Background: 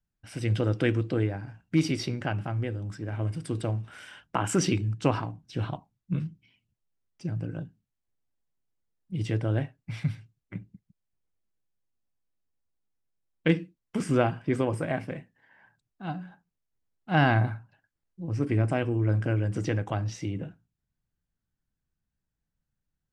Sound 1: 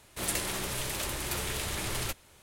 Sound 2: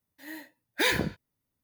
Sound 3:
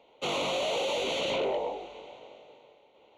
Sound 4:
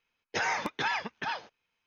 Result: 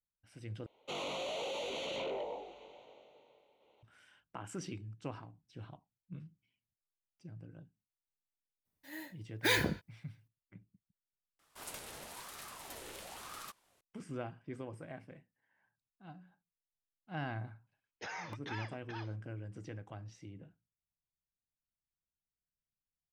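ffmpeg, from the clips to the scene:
-filter_complex "[0:a]volume=0.126[s0];[1:a]aeval=exprs='val(0)*sin(2*PI*840*n/s+840*0.5/1*sin(2*PI*1*n/s))':c=same[s1];[s0]asplit=3[s2][s3][s4];[s2]atrim=end=0.664[s5];[3:a]atrim=end=3.17,asetpts=PTS-STARTPTS,volume=0.335[s6];[s3]atrim=start=3.826:end=11.394[s7];[s1]atrim=end=2.42,asetpts=PTS-STARTPTS,volume=0.251[s8];[s4]atrim=start=13.806[s9];[2:a]atrim=end=1.63,asetpts=PTS-STARTPTS,volume=0.596,afade=t=in:d=0.004:c=hsin,afade=t=out:st=1.626:d=0.004:c=hsin,adelay=8650[s10];[4:a]atrim=end=1.86,asetpts=PTS-STARTPTS,volume=0.2,afade=t=in:d=0.004:c=hsin,afade=t=out:st=1.856:d=0.004:c=hsin,adelay=17670[s11];[s5][s6]acrossfade=d=0.004:c1=hsin:c2=hsin[s12];[s12][s7]acrossfade=d=0.004:c1=hsin:c2=hsin[s13];[s13][s8]acrossfade=d=0.004:c1=hsin:c2=hsin[s14];[s14][s9]acrossfade=d=0.004:c1=hsin:c2=hsin[s15];[s15][s10][s11]amix=inputs=3:normalize=0"

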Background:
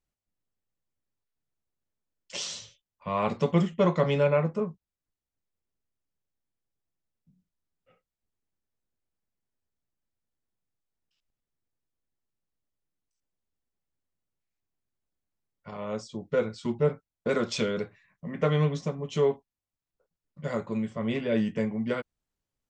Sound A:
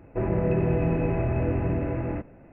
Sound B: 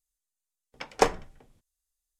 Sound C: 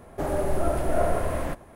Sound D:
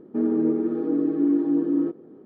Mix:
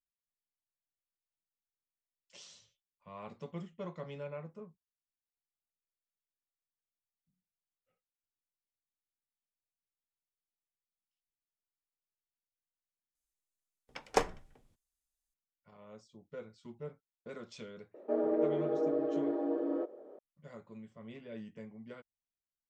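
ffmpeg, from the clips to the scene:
-filter_complex "[0:a]volume=0.106[s0];[4:a]highpass=f=590:t=q:w=7[s1];[2:a]atrim=end=2.19,asetpts=PTS-STARTPTS,volume=0.447,afade=t=in:d=0.004:c=hsin,afade=t=out:st=2.186:d=0.004:c=hsin,adelay=13150[s2];[s1]atrim=end=2.25,asetpts=PTS-STARTPTS,volume=0.596,afade=t=in:d=0.004:c=hsin,afade=t=out:st=2.246:d=0.004:c=hsin,adelay=17940[s3];[s0][s2][s3]amix=inputs=3:normalize=0"

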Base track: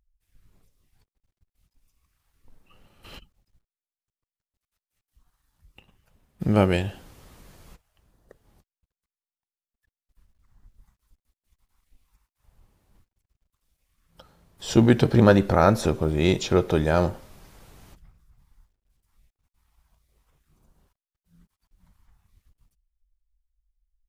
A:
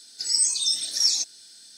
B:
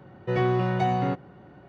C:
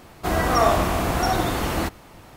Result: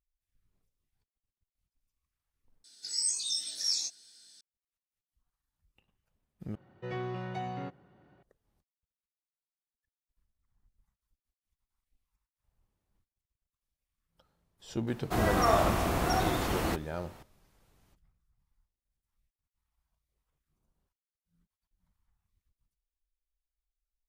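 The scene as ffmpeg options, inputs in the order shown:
-filter_complex "[0:a]volume=0.15[s0];[1:a]flanger=delay=16:depth=6.4:speed=1.3[s1];[2:a]highshelf=f=2200:g=5.5[s2];[s0]asplit=3[s3][s4][s5];[s3]atrim=end=2.644[s6];[s1]atrim=end=1.77,asetpts=PTS-STARTPTS,volume=0.501[s7];[s4]atrim=start=4.406:end=6.554[s8];[s2]atrim=end=1.68,asetpts=PTS-STARTPTS,volume=0.211[s9];[s5]atrim=start=8.226[s10];[3:a]atrim=end=2.36,asetpts=PTS-STARTPTS,volume=0.447,afade=t=in:d=0.004:c=hsin,afade=t=out:st=2.356:d=0.004:c=hsin,adelay=14870[s11];[s6][s7]acrossfade=d=0.004:c1=hsin:c2=hsin[s12];[s12][s8]acrossfade=d=0.004:c1=hsin:c2=hsin[s13];[s13][s9]acrossfade=d=0.004:c1=hsin:c2=hsin[s14];[s14][s10]acrossfade=d=0.004:c1=hsin:c2=hsin[s15];[s15][s11]amix=inputs=2:normalize=0"

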